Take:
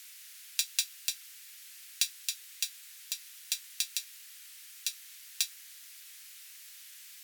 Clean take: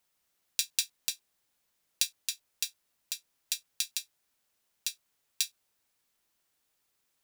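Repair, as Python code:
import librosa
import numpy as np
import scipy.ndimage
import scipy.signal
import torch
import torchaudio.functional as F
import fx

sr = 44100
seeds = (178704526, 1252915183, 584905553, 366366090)

y = fx.fix_declip(x, sr, threshold_db=-9.5)
y = fx.noise_reduce(y, sr, print_start_s=5.55, print_end_s=6.05, reduce_db=26.0)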